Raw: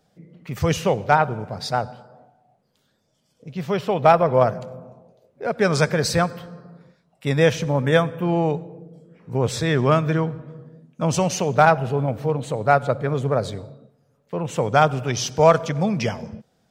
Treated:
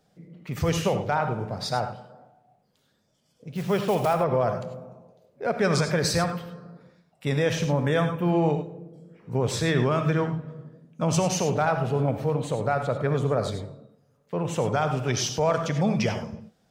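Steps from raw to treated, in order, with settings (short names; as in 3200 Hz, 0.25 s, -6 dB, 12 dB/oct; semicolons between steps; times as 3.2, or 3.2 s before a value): 3.53–4.14 block floating point 5-bit; limiter -11.5 dBFS, peak gain reduction 9 dB; non-linear reverb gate 0.12 s rising, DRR 7.5 dB; gain -2 dB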